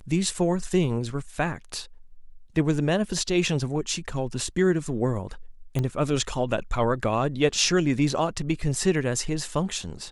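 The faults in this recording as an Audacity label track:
5.790000	5.790000	click −15 dBFS

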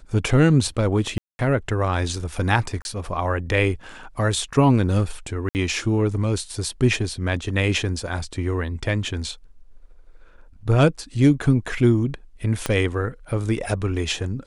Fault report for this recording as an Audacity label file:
1.180000	1.390000	drop-out 210 ms
2.820000	2.850000	drop-out 31 ms
5.490000	5.550000	drop-out 59 ms
12.660000	12.660000	click −8 dBFS

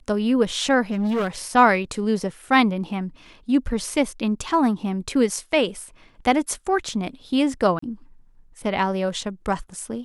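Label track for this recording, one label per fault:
0.910000	1.280000	clipping −19.5 dBFS
7.790000	7.820000	drop-out 34 ms

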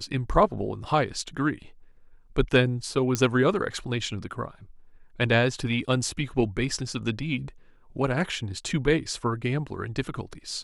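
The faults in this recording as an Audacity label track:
3.150000	3.150000	click −10 dBFS

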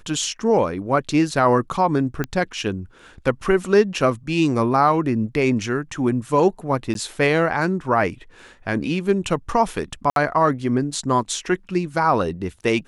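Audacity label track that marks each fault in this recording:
2.240000	2.240000	click −11 dBFS
6.940000	6.950000	drop-out 12 ms
10.100000	10.160000	drop-out 62 ms

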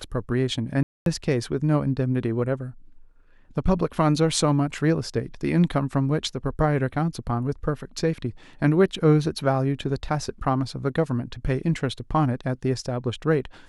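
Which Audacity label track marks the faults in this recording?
0.830000	1.060000	drop-out 232 ms

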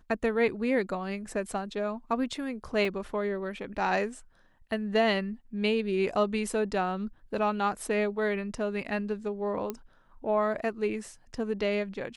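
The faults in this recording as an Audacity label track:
2.850000	2.850000	drop-out 2.1 ms
9.700000	9.700000	click −19 dBFS

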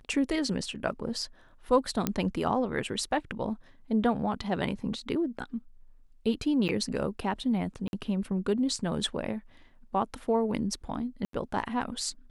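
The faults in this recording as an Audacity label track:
2.070000	2.070000	click −11 dBFS
6.680000	6.690000	drop-out 9.2 ms
7.880000	7.930000	drop-out 51 ms
11.250000	11.330000	drop-out 83 ms

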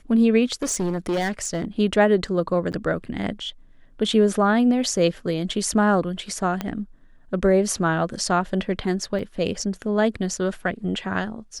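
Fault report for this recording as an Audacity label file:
0.620000	1.650000	clipping −20 dBFS
2.720000	2.730000	drop-out 9.1 ms
6.610000	6.610000	click −12 dBFS
9.190000	9.190000	drop-out 2.5 ms

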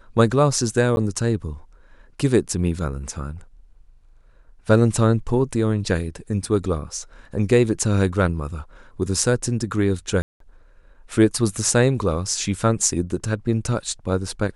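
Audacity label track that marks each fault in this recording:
0.960000	0.970000	drop-out
10.220000	10.400000	drop-out 183 ms

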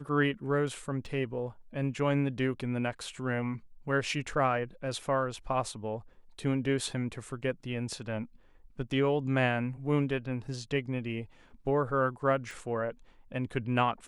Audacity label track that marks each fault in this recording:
1.060000	1.060000	drop-out 2.1 ms
12.510000	12.510000	click

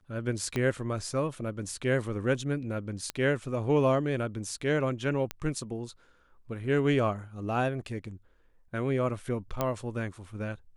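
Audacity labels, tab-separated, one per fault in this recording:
0.560000	0.560000	click −17 dBFS
3.100000	3.100000	click −16 dBFS
5.310000	5.310000	click −16 dBFS
9.610000	9.610000	click −14 dBFS

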